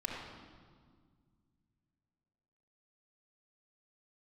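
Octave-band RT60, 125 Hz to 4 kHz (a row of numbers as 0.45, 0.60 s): 3.2, 2.8, 1.9, 1.7, 1.4, 1.4 s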